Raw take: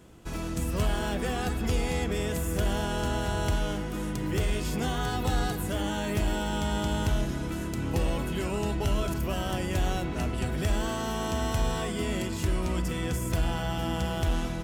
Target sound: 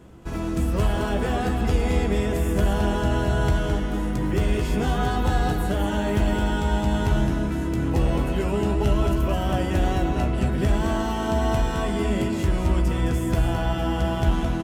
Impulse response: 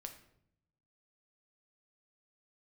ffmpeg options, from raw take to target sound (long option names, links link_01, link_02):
-filter_complex "[0:a]highshelf=frequency=2300:gain=-9.5,asplit=2[link_01][link_02];[link_02]adelay=15,volume=-8dB[link_03];[link_01][link_03]amix=inputs=2:normalize=0,asplit=2[link_04][link_05];[link_05]aecho=0:1:214:0.501[link_06];[link_04][link_06]amix=inputs=2:normalize=0,volume=5.5dB"